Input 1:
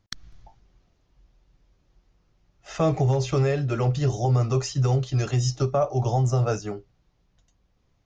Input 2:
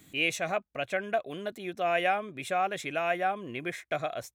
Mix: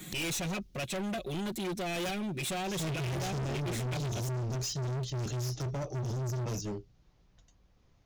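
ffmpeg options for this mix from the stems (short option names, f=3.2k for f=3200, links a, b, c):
-filter_complex "[0:a]volume=1.5dB[a];[1:a]aecho=1:1:5.5:1,aeval=exprs='0.335*sin(PI/2*1.58*val(0)/0.335)':c=same,volume=1.5dB[b];[a][b]amix=inputs=2:normalize=0,acrossover=split=370|3000[c][d][e];[d]acompressor=threshold=-52dB:ratio=2.5[f];[c][f][e]amix=inputs=3:normalize=0,asoftclip=type=hard:threshold=-32.5dB"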